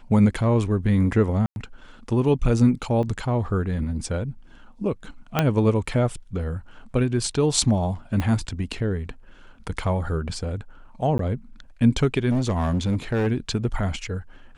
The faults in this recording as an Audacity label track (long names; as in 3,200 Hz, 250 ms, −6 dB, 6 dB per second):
1.460000	1.560000	drop-out 101 ms
3.030000	3.030000	drop-out 3.4 ms
5.390000	5.390000	click −5 dBFS
8.200000	8.200000	click −13 dBFS
11.180000	11.190000	drop-out 13 ms
12.300000	13.280000	clipping −18.5 dBFS